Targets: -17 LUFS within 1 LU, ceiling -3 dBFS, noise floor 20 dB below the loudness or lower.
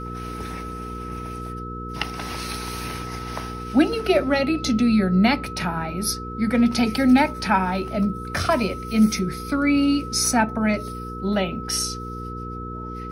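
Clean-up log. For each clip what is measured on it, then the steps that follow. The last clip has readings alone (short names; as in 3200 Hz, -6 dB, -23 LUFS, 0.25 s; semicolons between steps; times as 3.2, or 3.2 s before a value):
hum 60 Hz; harmonics up to 480 Hz; hum level -32 dBFS; steady tone 1300 Hz; tone level -34 dBFS; loudness -23.0 LUFS; peak -5.5 dBFS; loudness target -17.0 LUFS
-> de-hum 60 Hz, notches 8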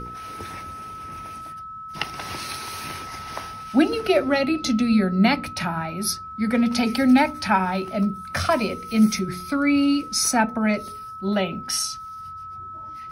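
hum none; steady tone 1300 Hz; tone level -34 dBFS
-> notch 1300 Hz, Q 30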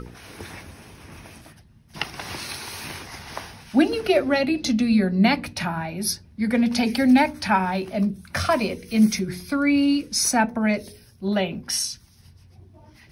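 steady tone none; loudness -22.5 LUFS; peak -6.5 dBFS; loudness target -17.0 LUFS
-> gain +5.5 dB; limiter -3 dBFS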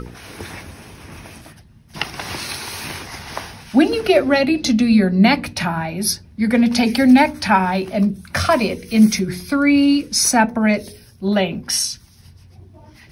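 loudness -17.0 LUFS; peak -3.0 dBFS; noise floor -47 dBFS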